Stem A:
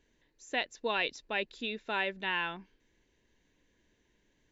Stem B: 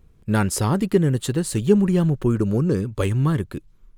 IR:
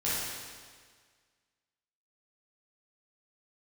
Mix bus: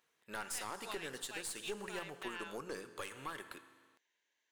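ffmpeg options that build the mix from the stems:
-filter_complex "[0:a]volume=-2.5dB[link_01];[1:a]volume=-4dB,asplit=3[link_02][link_03][link_04];[link_03]volume=-19.5dB[link_05];[link_04]apad=whole_len=198990[link_06];[link_01][link_06]sidechaincompress=threshold=-27dB:ratio=8:attack=46:release=302[link_07];[2:a]atrim=start_sample=2205[link_08];[link_05][link_08]afir=irnorm=-1:irlink=0[link_09];[link_07][link_02][link_09]amix=inputs=3:normalize=0,highpass=880,aeval=exprs='(tanh(15.8*val(0)+0.65)-tanh(0.65))/15.8':channel_layout=same,alimiter=level_in=5.5dB:limit=-24dB:level=0:latency=1:release=156,volume=-5.5dB"

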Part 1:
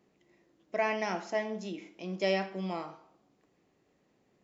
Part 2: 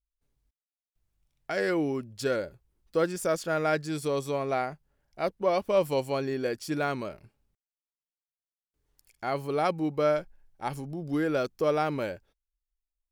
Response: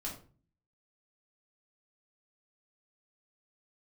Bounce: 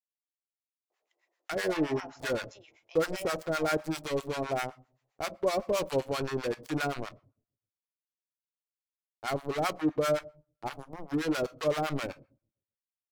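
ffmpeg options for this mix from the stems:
-filter_complex "[0:a]highpass=frequency=540:width=0.5412,highpass=frequency=540:width=1.3066,alimiter=level_in=1dB:limit=-24dB:level=0:latency=1,volume=-1dB,adelay=900,volume=-2dB[link_01];[1:a]equalizer=frequency=67:width=2.6:gain=10.5,acrusher=bits=4:mix=0:aa=0.5,volume=0.5dB,asplit=2[link_02][link_03];[link_03]volume=-12dB[link_04];[2:a]atrim=start_sample=2205[link_05];[link_04][link_05]afir=irnorm=-1:irlink=0[link_06];[link_01][link_02][link_06]amix=inputs=3:normalize=0,acrossover=split=830[link_07][link_08];[link_07]aeval=exprs='val(0)*(1-1/2+1/2*cos(2*PI*7.7*n/s))':channel_layout=same[link_09];[link_08]aeval=exprs='val(0)*(1-1/2-1/2*cos(2*PI*7.7*n/s))':channel_layout=same[link_10];[link_09][link_10]amix=inputs=2:normalize=0"

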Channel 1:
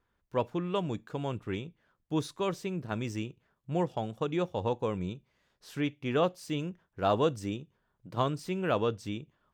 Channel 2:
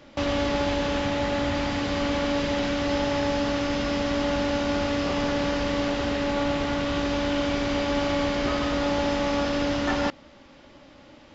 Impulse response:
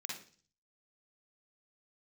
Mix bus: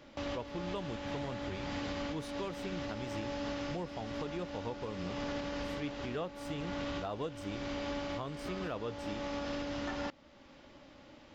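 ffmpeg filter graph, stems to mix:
-filter_complex "[0:a]volume=-3.5dB,asplit=2[link_01][link_02];[1:a]volume=-6dB[link_03];[link_02]apad=whole_len=500176[link_04];[link_03][link_04]sidechaincompress=threshold=-36dB:ratio=5:attack=7.8:release=687[link_05];[link_01][link_05]amix=inputs=2:normalize=0,alimiter=level_in=4.5dB:limit=-24dB:level=0:latency=1:release=437,volume=-4.5dB"

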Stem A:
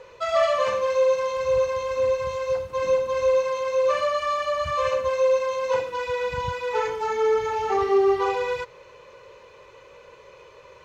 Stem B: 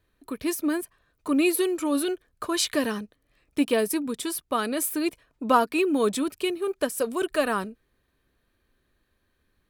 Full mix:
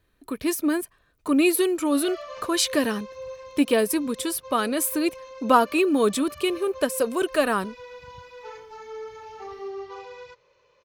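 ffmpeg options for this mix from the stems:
ffmpeg -i stem1.wav -i stem2.wav -filter_complex "[0:a]lowpass=frequency=5500:width_type=q:width=2,adelay=1700,volume=-16dB[link_01];[1:a]volume=2.5dB,asplit=2[link_02][link_03];[link_03]apad=whole_len=553080[link_04];[link_01][link_04]sidechaincompress=threshold=-26dB:ratio=8:attack=16:release=101[link_05];[link_05][link_02]amix=inputs=2:normalize=0" out.wav

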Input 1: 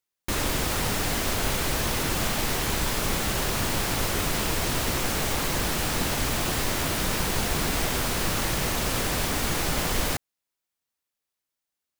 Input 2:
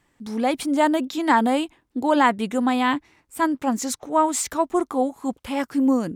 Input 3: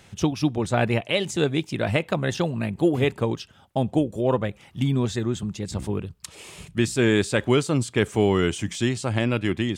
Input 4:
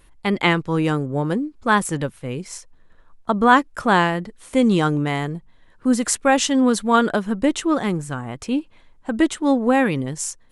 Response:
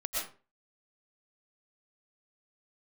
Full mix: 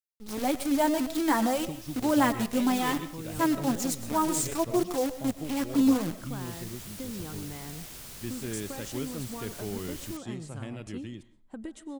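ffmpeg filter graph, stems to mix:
-filter_complex "[0:a]tiltshelf=frequency=1400:gain=-4.5,volume=-16.5dB[link_01];[1:a]flanger=delay=5.2:depth=2.8:regen=-19:speed=0.63:shape=triangular,acrusher=bits=6:dc=4:mix=0:aa=0.000001,volume=-0.5dB,asplit=3[link_02][link_03][link_04];[link_03]volume=-14.5dB[link_05];[2:a]adelay=1450,volume=-15dB,asplit=2[link_06][link_07];[link_07]volume=-20dB[link_08];[3:a]acompressor=threshold=-22dB:ratio=10,adelay=2450,volume=-13dB,asplit=2[link_09][link_10];[link_10]volume=-16dB[link_11];[link_04]apad=whole_len=529045[link_12];[link_01][link_12]sidechaincompress=threshold=-35dB:ratio=4:attack=6.7:release=435[link_13];[4:a]atrim=start_sample=2205[link_14];[link_05][link_08][link_11]amix=inputs=3:normalize=0[link_15];[link_15][link_14]afir=irnorm=-1:irlink=0[link_16];[link_13][link_02][link_06][link_09][link_16]amix=inputs=5:normalize=0,equalizer=frequency=1500:width=0.32:gain=-6.5"

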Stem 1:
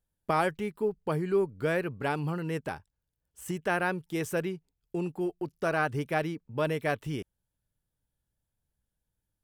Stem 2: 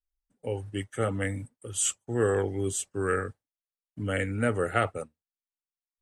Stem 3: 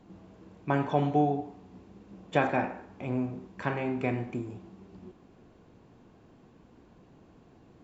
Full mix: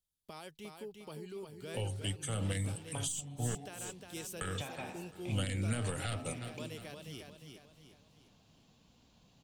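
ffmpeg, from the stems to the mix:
ffmpeg -i stem1.wav -i stem2.wav -i stem3.wav -filter_complex "[0:a]alimiter=level_in=1dB:limit=-24dB:level=0:latency=1:release=401,volume=-1dB,volume=-12.5dB,asplit=2[link_01][link_02];[link_02]volume=-5.5dB[link_03];[1:a]bandreject=frequency=76.87:width_type=h:width=4,bandreject=frequency=153.74:width_type=h:width=4,bandreject=frequency=230.61:width_type=h:width=4,bandreject=frequency=307.48:width_type=h:width=4,bandreject=frequency=384.35:width_type=h:width=4,bandreject=frequency=461.22:width_type=h:width=4,bandreject=frequency=538.09:width_type=h:width=4,bandreject=frequency=614.96:width_type=h:width=4,bandreject=frequency=691.83:width_type=h:width=4,bandreject=frequency=768.7:width_type=h:width=4,bandreject=frequency=845.57:width_type=h:width=4,bandreject=frequency=922.44:width_type=h:width=4,bandreject=frequency=999.31:width_type=h:width=4,bandreject=frequency=1076.18:width_type=h:width=4,bandreject=frequency=1153.05:width_type=h:width=4,bandreject=frequency=1229.92:width_type=h:width=4,bandreject=frequency=1306.79:width_type=h:width=4,aeval=exprs='0.282*(cos(1*acos(clip(val(0)/0.282,-1,1)))-cos(1*PI/2))+0.0891*(cos(2*acos(clip(val(0)/0.282,-1,1)))-cos(2*PI/2))':channel_layout=same,adelay=1300,volume=0dB,asplit=3[link_04][link_05][link_06];[link_04]atrim=end=3.55,asetpts=PTS-STARTPTS,afade=type=out:start_time=3.546:duration=0.004:curve=hsin[link_07];[link_05]atrim=start=3.55:end=4.41,asetpts=PTS-STARTPTS,volume=0[link_08];[link_06]atrim=start=4.41,asetpts=PTS-STARTPTS,afade=type=in:duration=0.004:curve=hsin[link_09];[link_07][link_08][link_09]concat=n=3:v=0:a=1,asplit=2[link_10][link_11];[link_11]volume=-24dB[link_12];[2:a]acompressor=threshold=-29dB:ratio=6,adelay=2250,volume=-7dB[link_13];[link_10][link_13]amix=inputs=2:normalize=0,equalizer=frequency=360:width=2.1:gain=-12.5,alimiter=limit=-22dB:level=0:latency=1:release=54,volume=0dB[link_14];[link_03][link_12]amix=inputs=2:normalize=0,aecho=0:1:355|710|1065|1420|1775|2130:1|0.42|0.176|0.0741|0.0311|0.0131[link_15];[link_01][link_14][link_15]amix=inputs=3:normalize=0,highshelf=frequency=2500:width_type=q:width=1.5:gain=11.5,acrossover=split=280[link_16][link_17];[link_17]acompressor=threshold=-37dB:ratio=8[link_18];[link_16][link_18]amix=inputs=2:normalize=0" out.wav

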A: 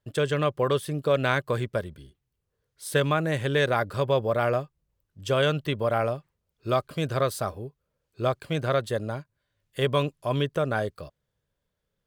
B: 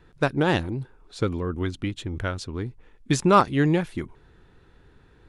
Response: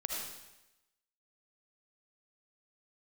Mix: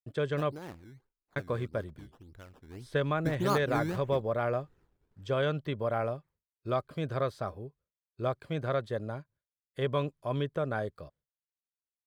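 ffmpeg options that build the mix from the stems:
-filter_complex "[0:a]bandreject=frequency=2800:width=11,acrossover=split=5600[link_01][link_02];[link_02]acompressor=threshold=-53dB:ratio=4:attack=1:release=60[link_03];[link_01][link_03]amix=inputs=2:normalize=0,volume=-5.5dB,asplit=3[link_04][link_05][link_06];[link_04]atrim=end=0.59,asetpts=PTS-STARTPTS,afade=type=out:start_time=0.586:duration=0.004:curve=hsin[link_07];[link_05]atrim=start=0.59:end=1.36,asetpts=PTS-STARTPTS,volume=0[link_08];[link_06]atrim=start=1.36,asetpts=PTS-STARTPTS,afade=type=in:duration=0.004:curve=hsin[link_09];[link_07][link_08][link_09]concat=n=3:v=0:a=1[link_10];[1:a]acrusher=samples=16:mix=1:aa=0.000001:lfo=1:lforange=16:lforate=1.7,adelay=150,volume=-12.5dB,afade=type=in:start_time=2.59:duration=0.29:silence=0.334965[link_11];[link_10][link_11]amix=inputs=2:normalize=0,agate=range=-33dB:threshold=-58dB:ratio=3:detection=peak,highshelf=frequency=3000:gain=-7.5"

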